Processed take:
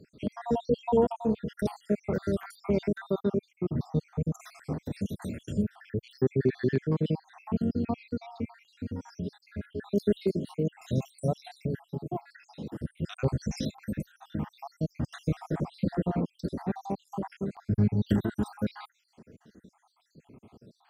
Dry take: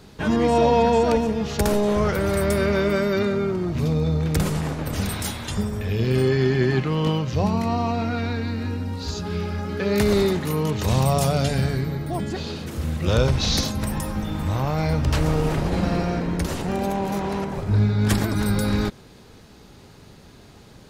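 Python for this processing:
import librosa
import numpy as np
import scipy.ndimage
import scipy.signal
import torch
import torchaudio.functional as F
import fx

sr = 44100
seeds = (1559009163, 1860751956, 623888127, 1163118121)

y = fx.spec_dropout(x, sr, seeds[0], share_pct=71)
y = scipy.signal.sosfilt(scipy.signal.butter(2, 210.0, 'highpass', fs=sr, output='sos'), y)
y = fx.tilt_eq(y, sr, slope=-4.5)
y = fx.notch_comb(y, sr, f0_hz=1200.0, at=(10.18, 12.75))
y = fx.high_shelf(y, sr, hz=2100.0, db=8.5)
y = fx.filter_held_notch(y, sr, hz=3.7, low_hz=890.0, high_hz=6900.0)
y = y * librosa.db_to_amplitude(-8.0)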